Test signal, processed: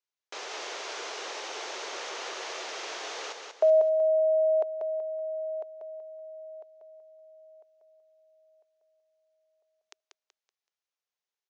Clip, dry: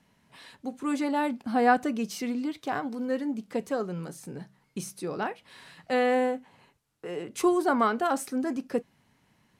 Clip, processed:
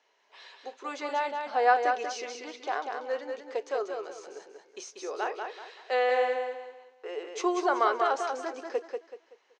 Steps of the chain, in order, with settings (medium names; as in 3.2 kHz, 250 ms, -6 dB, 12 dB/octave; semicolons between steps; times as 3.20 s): Chebyshev band-pass 390–6500 Hz, order 4; on a send: feedback delay 189 ms, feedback 32%, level -5 dB